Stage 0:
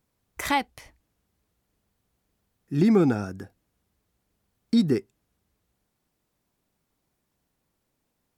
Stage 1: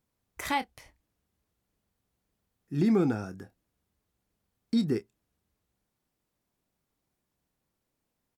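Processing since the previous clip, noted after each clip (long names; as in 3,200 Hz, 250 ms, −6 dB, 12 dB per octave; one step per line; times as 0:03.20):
double-tracking delay 27 ms −12.5 dB
level −5.5 dB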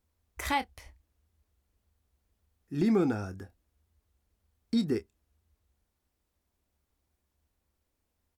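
low shelf with overshoot 100 Hz +7 dB, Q 3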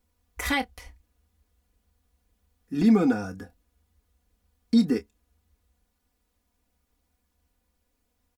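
comb filter 4.1 ms, depth 83%
level +3 dB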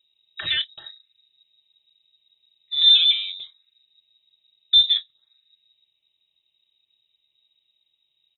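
phaser swept by the level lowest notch 390 Hz, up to 3,000 Hz, full sweep at −27.5 dBFS
voice inversion scrambler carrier 3,800 Hz
level +4 dB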